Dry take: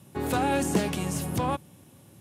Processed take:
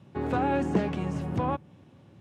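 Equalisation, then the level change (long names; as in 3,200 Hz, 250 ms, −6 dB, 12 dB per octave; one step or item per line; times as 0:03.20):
dynamic equaliser 4,000 Hz, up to −6 dB, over −49 dBFS, Q 0.95
high-frequency loss of the air 150 metres
parametric band 8,000 Hz −4 dB 1.8 octaves
0.0 dB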